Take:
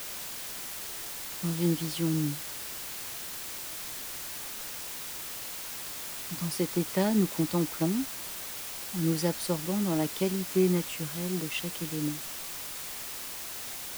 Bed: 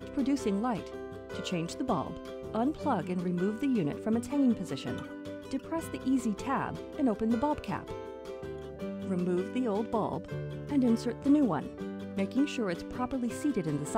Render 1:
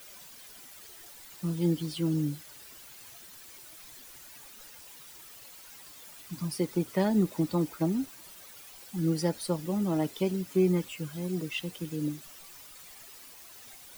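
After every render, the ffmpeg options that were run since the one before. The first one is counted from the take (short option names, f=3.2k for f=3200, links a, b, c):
-af "afftdn=nr=13:nf=-39"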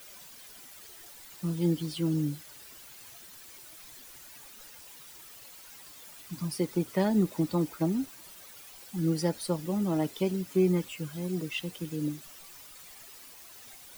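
-af anull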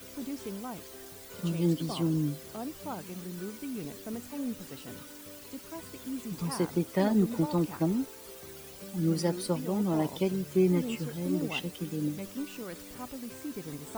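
-filter_complex "[1:a]volume=-9dB[a];[0:a][a]amix=inputs=2:normalize=0"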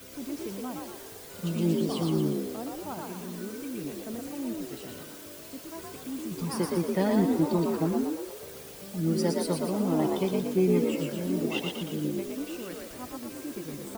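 -filter_complex "[0:a]asplit=7[a][b][c][d][e][f][g];[b]adelay=117,afreqshift=53,volume=-3dB[h];[c]adelay=234,afreqshift=106,volume=-9.4dB[i];[d]adelay=351,afreqshift=159,volume=-15.8dB[j];[e]adelay=468,afreqshift=212,volume=-22.1dB[k];[f]adelay=585,afreqshift=265,volume=-28.5dB[l];[g]adelay=702,afreqshift=318,volume=-34.9dB[m];[a][h][i][j][k][l][m]amix=inputs=7:normalize=0"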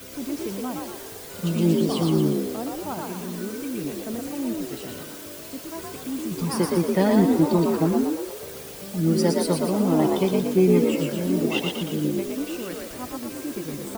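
-af "volume=6dB"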